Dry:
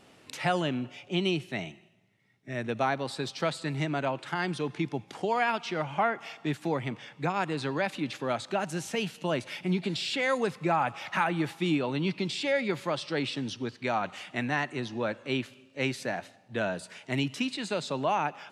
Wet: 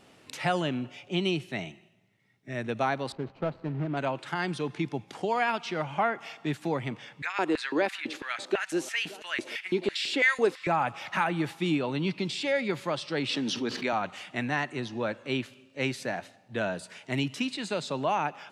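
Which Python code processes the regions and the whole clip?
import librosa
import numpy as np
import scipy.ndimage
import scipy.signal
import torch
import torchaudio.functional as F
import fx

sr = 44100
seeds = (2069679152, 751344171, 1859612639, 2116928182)

y = fx.chain(x, sr, fx.median_filter(points=25),
    fx.lowpass(hz=2400.0, slope=12), at=(3.12, 3.97))
y = fx.chain(y, sr, fx.echo_single(ms=574, db=-21.0),
    fx.filter_lfo_highpass(shape='square', hz=3.0, low_hz=330.0, high_hz=1800.0, q=2.9), at=(7.22, 10.67))
y = fx.chain(y, sr, fx.highpass(hz=170.0, slope=24),
    fx.peak_eq(hz=8600.0, db=-4.0, octaves=0.4),
    fx.env_flatten(amount_pct=70), at=(13.29, 13.93))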